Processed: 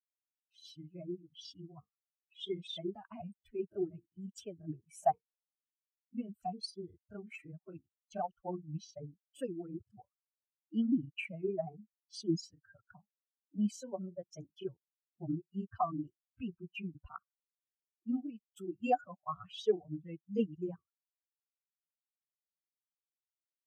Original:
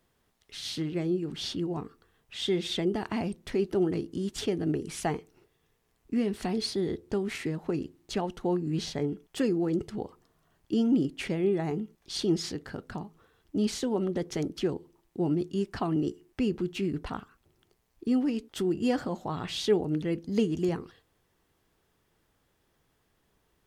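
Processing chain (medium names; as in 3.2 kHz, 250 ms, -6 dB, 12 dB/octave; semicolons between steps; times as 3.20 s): expander on every frequency bin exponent 3; vowel filter a; tone controls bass +15 dB, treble +14 dB; granulator 100 ms, grains 20 per s, spray 16 ms, pitch spread up and down by 0 st; peaking EQ 3.8 kHz -4 dB 1.1 oct; trim +14 dB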